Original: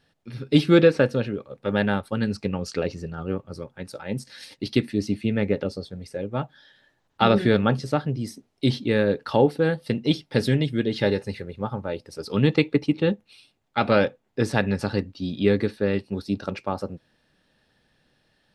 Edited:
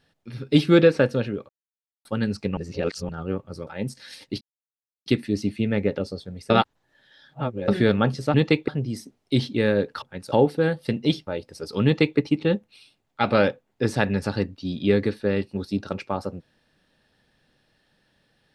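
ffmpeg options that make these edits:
ffmpeg -i in.wav -filter_complex "[0:a]asplit=14[link_01][link_02][link_03][link_04][link_05][link_06][link_07][link_08][link_09][link_10][link_11][link_12][link_13][link_14];[link_01]atrim=end=1.49,asetpts=PTS-STARTPTS,afade=type=out:start_time=1.486:duration=0.004:curve=hsin[link_15];[link_02]atrim=start=1.49:end=2.05,asetpts=PTS-STARTPTS,volume=0[link_16];[link_03]atrim=start=2.05:end=2.572,asetpts=PTS-STARTPTS,afade=type=in:duration=0.004:curve=hsin[link_17];[link_04]atrim=start=2.568:end=3.092,asetpts=PTS-STARTPTS,areverse[link_18];[link_05]atrim=start=3.088:end=3.672[link_19];[link_06]atrim=start=3.968:end=4.71,asetpts=PTS-STARTPTS,afade=type=out:start_time=0.738:duration=0.004:curve=hsin,apad=pad_dur=0.65[link_20];[link_07]atrim=start=4.71:end=6.152,asetpts=PTS-STARTPTS,afade=type=in:duration=0.004:curve=hsin[link_21];[link_08]atrim=start=6.148:end=7.332,asetpts=PTS-STARTPTS,areverse[link_22];[link_09]atrim=start=7.328:end=7.992[link_23];[link_10]atrim=start=12.408:end=12.752[link_24];[link_11]atrim=start=7.988:end=9.332[link_25];[link_12]atrim=start=3.668:end=3.972[link_26];[link_13]atrim=start=9.328:end=10.282[link_27];[link_14]atrim=start=11.838[link_28];[link_15][link_16][link_17]concat=n=3:v=0:a=1[link_29];[link_29][link_18]acrossfade=duration=0.004:curve1=hsin:curve2=hsin[link_30];[link_30][link_19]acrossfade=duration=0.004:curve1=hsin:curve2=hsin[link_31];[link_20][link_21]concat=n=2:v=0:a=1[link_32];[link_31][link_32]acrossfade=duration=0.004:curve1=hsin:curve2=hsin[link_33];[link_33][link_22]acrossfade=duration=0.004:curve1=hsin:curve2=hsin[link_34];[link_34][link_23]acrossfade=duration=0.004:curve1=hsin:curve2=hsin[link_35];[link_35][link_24]acrossfade=duration=0.004:curve1=hsin:curve2=hsin[link_36];[link_36][link_25]acrossfade=duration=0.004:curve1=hsin:curve2=hsin[link_37];[link_37][link_26]acrossfade=duration=0.004:curve1=hsin:curve2=hsin[link_38];[link_38][link_27]acrossfade=duration=0.004:curve1=hsin:curve2=hsin[link_39];[link_39][link_28]acrossfade=duration=0.004:curve1=hsin:curve2=hsin" out.wav

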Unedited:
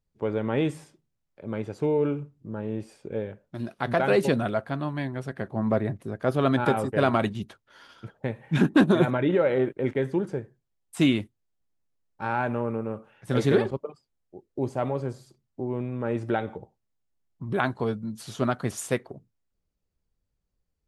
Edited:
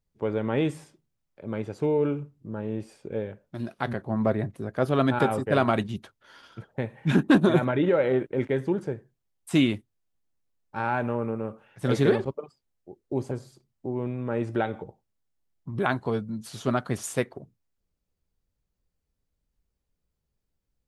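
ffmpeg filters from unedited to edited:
ffmpeg -i in.wav -filter_complex "[0:a]asplit=3[link_01][link_02][link_03];[link_01]atrim=end=3.932[link_04];[link_02]atrim=start=5.388:end=14.772[link_05];[link_03]atrim=start=15.048[link_06];[link_04][link_05]acrossfade=duration=0.004:curve1=hsin:curve2=hsin[link_07];[link_07][link_06]acrossfade=duration=0.004:curve1=hsin:curve2=hsin" out.wav

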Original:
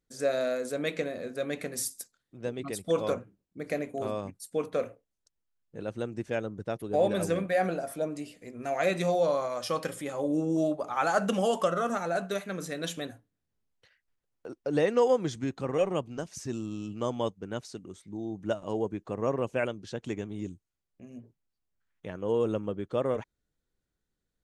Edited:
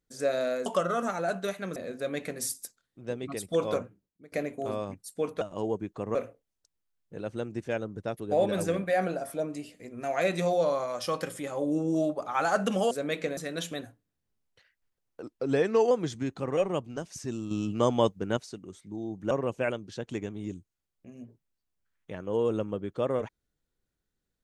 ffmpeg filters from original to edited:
ffmpeg -i in.wav -filter_complex "[0:a]asplit=13[link_01][link_02][link_03][link_04][link_05][link_06][link_07][link_08][link_09][link_10][link_11][link_12][link_13];[link_01]atrim=end=0.662[link_14];[link_02]atrim=start=11.528:end=12.632[link_15];[link_03]atrim=start=1.118:end=3.68,asetpts=PTS-STARTPTS,afade=type=out:start_time=2.082:duration=0.48:silence=0.0630957[link_16];[link_04]atrim=start=3.68:end=4.772,asetpts=PTS-STARTPTS,afade=type=in:duration=0.004:curve=hsin:silence=0.0630957[link_17];[link_05]atrim=start=18.518:end=19.262[link_18];[link_06]atrim=start=4.768:end=11.532[link_19];[link_07]atrim=start=0.658:end=1.122[link_20];[link_08]atrim=start=12.628:end=14.484[link_21];[link_09]atrim=start=14.48:end=15.12,asetpts=PTS-STARTPTS,asetrate=41013,aresample=44100,atrim=end_sample=30348,asetpts=PTS-STARTPTS[link_22];[link_10]atrim=start=15.116:end=16.722[link_23];[link_11]atrim=start=16.718:end=17.582,asetpts=PTS-STARTPTS,volume=6.5dB[link_24];[link_12]atrim=start=17.578:end=18.522[link_25];[link_13]atrim=start=19.258[link_26];[link_14][link_15]acrossfade=duration=0.004:curve1=hsin:curve2=hsin[link_27];[link_16][link_17]concat=n=2:v=0:a=1[link_28];[link_27][link_28]acrossfade=duration=0.004:curve1=hsin:curve2=hsin[link_29];[link_29][link_18]acrossfade=duration=0.004:curve1=hsin:curve2=hsin[link_30];[link_30][link_19]acrossfade=duration=0.004:curve1=hsin:curve2=hsin[link_31];[link_31][link_20]acrossfade=duration=0.004:curve1=hsin:curve2=hsin[link_32];[link_32][link_21]acrossfade=duration=0.004:curve1=hsin:curve2=hsin[link_33];[link_33][link_22]acrossfade=duration=0.004:curve1=hsin:curve2=hsin[link_34];[link_34][link_23]acrossfade=duration=0.004:curve1=hsin:curve2=hsin[link_35];[link_35][link_24]acrossfade=duration=0.004:curve1=hsin:curve2=hsin[link_36];[link_36][link_25]acrossfade=duration=0.004:curve1=hsin:curve2=hsin[link_37];[link_37][link_26]acrossfade=duration=0.004:curve1=hsin:curve2=hsin" out.wav

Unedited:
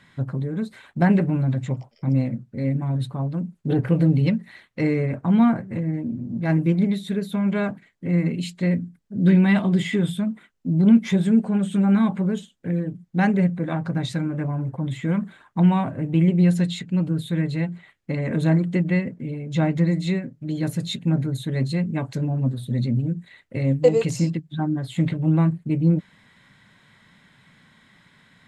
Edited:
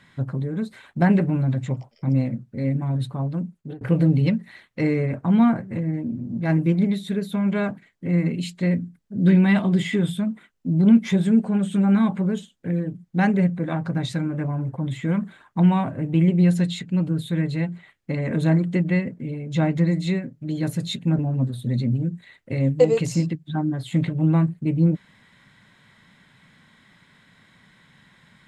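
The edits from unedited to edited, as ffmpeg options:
ffmpeg -i in.wav -filter_complex "[0:a]asplit=3[link_01][link_02][link_03];[link_01]atrim=end=3.81,asetpts=PTS-STARTPTS,afade=type=out:start_time=3.41:duration=0.4[link_04];[link_02]atrim=start=3.81:end=21.192,asetpts=PTS-STARTPTS,afade=type=in:duration=0.004:curve=hsin[link_05];[link_03]atrim=start=22.228[link_06];[link_04][link_05]concat=n=2:v=0:a=1[link_07];[link_07][link_06]acrossfade=duration=0.004:curve1=hsin:curve2=hsin" out.wav

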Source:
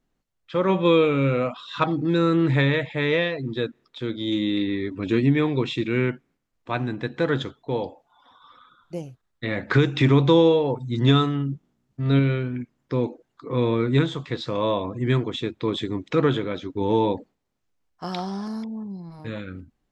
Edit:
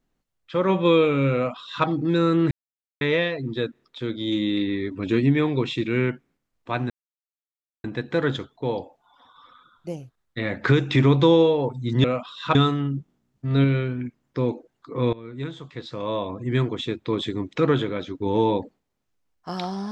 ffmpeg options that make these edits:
ffmpeg -i in.wav -filter_complex "[0:a]asplit=7[link_01][link_02][link_03][link_04][link_05][link_06][link_07];[link_01]atrim=end=2.51,asetpts=PTS-STARTPTS,afade=type=out:start_time=2.506:duration=0.004:curve=hsin[link_08];[link_02]atrim=start=2.51:end=3.01,asetpts=PTS-STARTPTS,volume=0[link_09];[link_03]atrim=start=3.01:end=6.9,asetpts=PTS-STARTPTS,afade=type=in:duration=0.004:curve=hsin,afade=type=out:start_time=3.886:duration=0.004:curve=hsin,apad=pad_dur=0.94[link_10];[link_04]atrim=start=6.9:end=11.102,asetpts=PTS-STARTPTS,afade=type=in:duration=0.004:curve=hsin[link_11];[link_05]atrim=start=1.348:end=1.862[link_12];[link_06]atrim=start=11.098:end=13.68,asetpts=PTS-STARTPTS,afade=type=out:start_time=2.578:duration=0.004:curve=hsin:silence=0.0841395[link_13];[link_07]atrim=start=13.68,asetpts=PTS-STARTPTS,afade=type=in:duration=1.62:silence=0.0841395[link_14];[link_08][link_09][link_10][link_11]concat=n=4:v=0:a=1[link_15];[link_15][link_12]acrossfade=duration=0.004:curve1=hsin:curve2=hsin[link_16];[link_13][link_14]concat=n=2:v=0:a=1[link_17];[link_16][link_17]acrossfade=duration=0.004:curve1=hsin:curve2=hsin" out.wav

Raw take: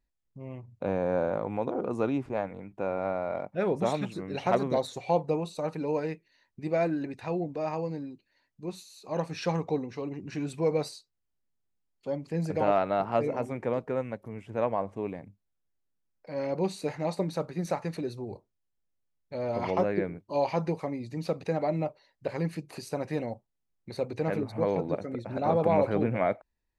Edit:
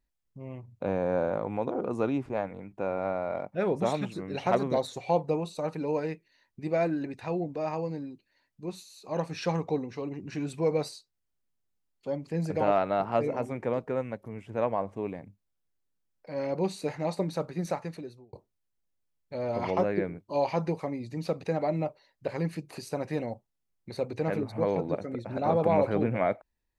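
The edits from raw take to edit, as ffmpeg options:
ffmpeg -i in.wav -filter_complex "[0:a]asplit=2[link_01][link_02];[link_01]atrim=end=18.33,asetpts=PTS-STARTPTS,afade=type=out:start_time=17.65:duration=0.68[link_03];[link_02]atrim=start=18.33,asetpts=PTS-STARTPTS,afade=type=in:duration=0.004:curve=hsin[link_04];[link_03][link_04]concat=n=2:v=0:a=1" out.wav

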